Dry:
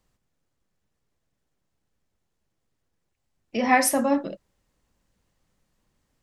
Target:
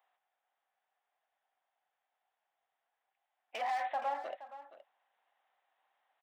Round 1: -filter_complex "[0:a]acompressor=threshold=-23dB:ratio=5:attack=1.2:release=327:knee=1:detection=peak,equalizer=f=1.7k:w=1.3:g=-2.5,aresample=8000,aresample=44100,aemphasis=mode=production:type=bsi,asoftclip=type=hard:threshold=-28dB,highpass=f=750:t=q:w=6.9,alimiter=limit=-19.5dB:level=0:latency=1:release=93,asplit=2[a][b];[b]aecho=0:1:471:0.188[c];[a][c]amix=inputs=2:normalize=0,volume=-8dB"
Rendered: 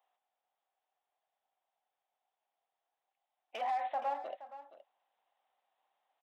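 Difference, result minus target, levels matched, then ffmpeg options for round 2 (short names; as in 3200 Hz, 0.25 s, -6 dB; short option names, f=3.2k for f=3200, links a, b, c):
2000 Hz band -5.5 dB
-filter_complex "[0:a]acompressor=threshold=-23dB:ratio=5:attack=1.2:release=327:knee=1:detection=peak,equalizer=f=1.7k:w=1.3:g=6,aresample=8000,aresample=44100,aemphasis=mode=production:type=bsi,asoftclip=type=hard:threshold=-28dB,highpass=f=750:t=q:w=6.9,alimiter=limit=-19.5dB:level=0:latency=1:release=93,asplit=2[a][b];[b]aecho=0:1:471:0.188[c];[a][c]amix=inputs=2:normalize=0,volume=-8dB"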